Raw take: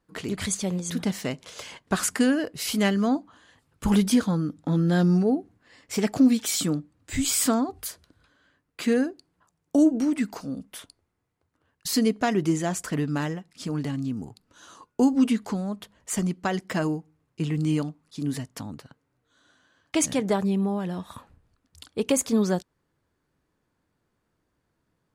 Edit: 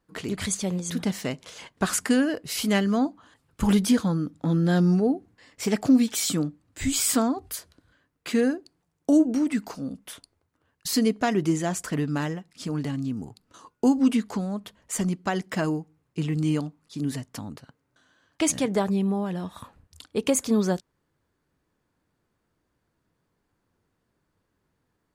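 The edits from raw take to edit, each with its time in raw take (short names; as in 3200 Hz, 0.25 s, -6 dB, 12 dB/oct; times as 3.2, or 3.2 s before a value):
shrink pauses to 65%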